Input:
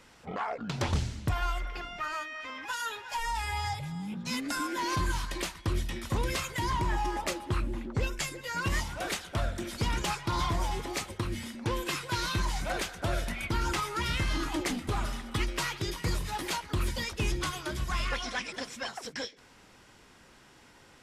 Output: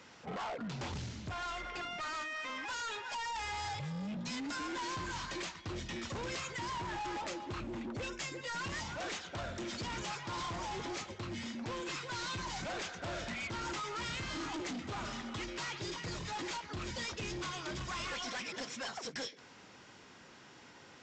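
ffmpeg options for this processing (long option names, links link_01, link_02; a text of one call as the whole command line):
ffmpeg -i in.wav -af "highpass=110,alimiter=level_in=0.5dB:limit=-24dB:level=0:latency=1:release=364,volume=-0.5dB,aresample=16000,asoftclip=type=hard:threshold=-38.5dB,aresample=44100,volume=1dB" out.wav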